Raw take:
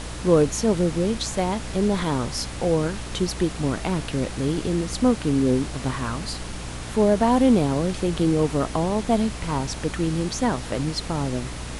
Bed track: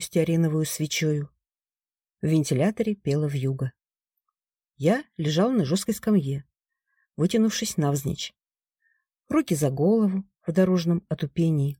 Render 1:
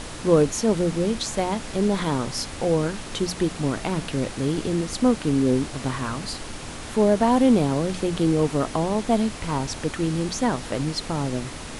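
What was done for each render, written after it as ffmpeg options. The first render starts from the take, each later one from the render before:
-af "bandreject=f=60:t=h:w=6,bandreject=f=120:t=h:w=6,bandreject=f=180:t=h:w=6"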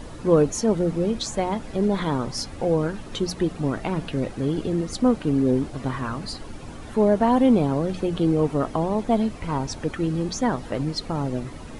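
-af "afftdn=nr=12:nf=-36"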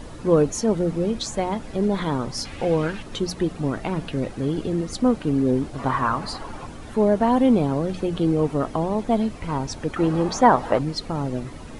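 -filter_complex "[0:a]asettb=1/sr,asplit=3[s0][s1][s2];[s0]atrim=end=2.454[s3];[s1]atrim=start=2.45:end=3.03,asetpts=PTS-STARTPTS,afade=t=in:d=0.004:c=qsin,afade=t=out:st=0.576:d=0.004:c=qsin,equalizer=f=2600:w=0.93:g=10.5[s4];[s2]atrim=start=3.026[s5];[s3][s4]acrossfade=d=0.004:c1=hsin:c2=qsin[s6];[s6][s5]acrossfade=d=0.004:c1=qsin:c2=hsin,asettb=1/sr,asplit=3[s7][s8][s9];[s7]atrim=end=5.784[s10];[s8]atrim=start=5.78:end=6.67,asetpts=PTS-STARTPTS,afade=t=in:d=0.004:c=qsin,afade=t=out:st=0.886:d=0.004:c=qsin,equalizer=f=1000:t=o:w=1.5:g=11.5[s11];[s9]atrim=start=6.666[s12];[s10][s11]acrossfade=d=0.004:c1=hsin:c2=qsin[s13];[s13][s12]acrossfade=d=0.004:c1=qsin:c2=hsin,asettb=1/sr,asplit=3[s14][s15][s16];[s14]atrim=end=9.964[s17];[s15]atrim=start=9.96:end=10.79,asetpts=PTS-STARTPTS,afade=t=in:d=0.004:c=qsin,afade=t=out:st=0.826:d=0.004:c=qsin,equalizer=f=890:t=o:w=2:g=13.5[s18];[s16]atrim=start=10.786[s19];[s17][s18]acrossfade=d=0.004:c1=hsin:c2=qsin[s20];[s20][s19]acrossfade=d=0.004:c1=qsin:c2=hsin"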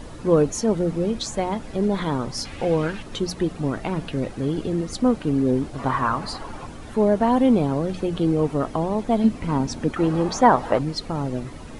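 -filter_complex "[0:a]asettb=1/sr,asplit=3[s0][s1][s2];[s0]atrim=end=9.244[s3];[s1]atrim=start=9.24:end=9.92,asetpts=PTS-STARTPTS,afade=t=in:d=0.004:c=qsin,afade=t=out:st=0.676:d=0.004:c=qsin,equalizer=f=230:w=1.5:g=9[s4];[s2]atrim=start=9.916[s5];[s3][s4]acrossfade=d=0.004:c1=hsin:c2=qsin[s6];[s6][s5]acrossfade=d=0.004:c1=qsin:c2=hsin"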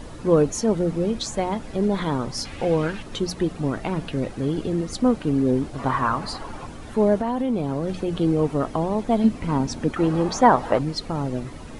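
-filter_complex "[0:a]asettb=1/sr,asplit=3[s0][s1][s2];[s0]atrim=end=7.154[s3];[s1]atrim=start=7.15:end=8.08,asetpts=PTS-STARTPTS,afade=t=in:d=0.004:c=qsin,afade=t=out:st=0.926:d=0.004:c=qsin,acompressor=threshold=0.112:ratio=10:attack=3.2:release=140:knee=1:detection=peak[s4];[s2]atrim=start=8.076[s5];[s3][s4]acrossfade=d=0.004:c1=hsin:c2=qsin[s6];[s6][s5]acrossfade=d=0.004:c1=qsin:c2=hsin"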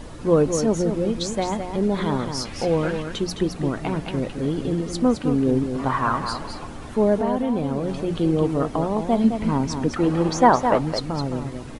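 -af "aecho=1:1:213:0.422"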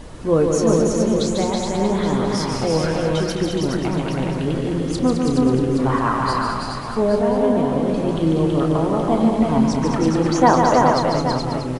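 -filter_complex "[0:a]asplit=2[s0][s1];[s1]adelay=31,volume=0.282[s2];[s0][s2]amix=inputs=2:normalize=0,aecho=1:1:145|326|421|822:0.562|0.668|0.596|0.316"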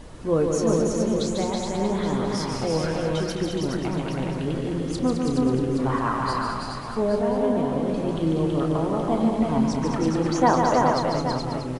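-af "volume=0.562"

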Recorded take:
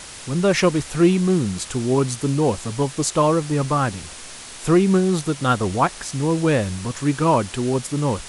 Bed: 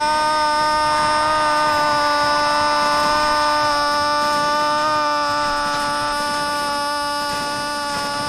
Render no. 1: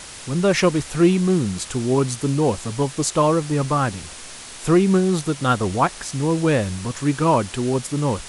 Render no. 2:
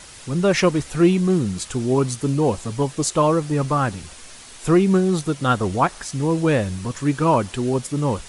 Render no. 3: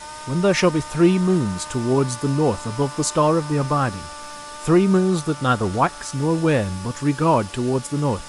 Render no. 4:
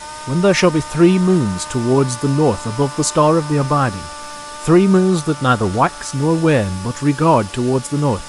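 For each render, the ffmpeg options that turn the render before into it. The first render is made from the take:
-af anull
-af "afftdn=nr=6:nf=-38"
-filter_complex "[1:a]volume=0.112[s0];[0:a][s0]amix=inputs=2:normalize=0"
-af "volume=1.68,alimiter=limit=0.794:level=0:latency=1"

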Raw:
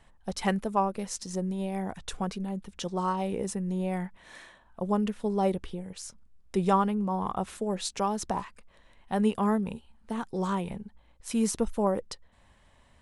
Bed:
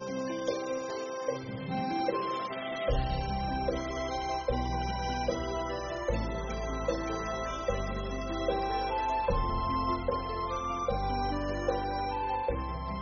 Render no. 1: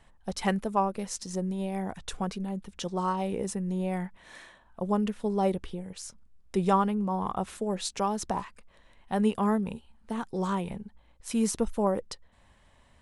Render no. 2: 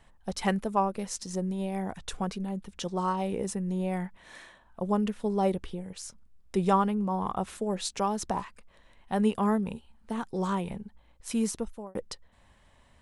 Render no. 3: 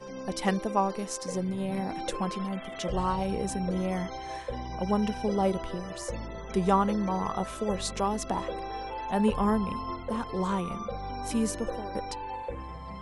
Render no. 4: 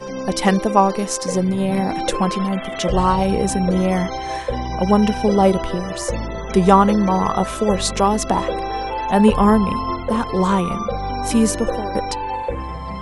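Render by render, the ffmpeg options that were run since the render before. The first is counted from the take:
-af anull
-filter_complex "[0:a]asplit=2[s0][s1];[s0]atrim=end=11.95,asetpts=PTS-STARTPTS,afade=t=out:st=11.31:d=0.64[s2];[s1]atrim=start=11.95,asetpts=PTS-STARTPTS,afade=t=in:d=0.004:c=hsin[s3];[s2][s3]concat=n=2:v=0:a=1"
-filter_complex "[1:a]volume=0.562[s0];[0:a][s0]amix=inputs=2:normalize=0"
-af "volume=3.98,alimiter=limit=0.891:level=0:latency=1"

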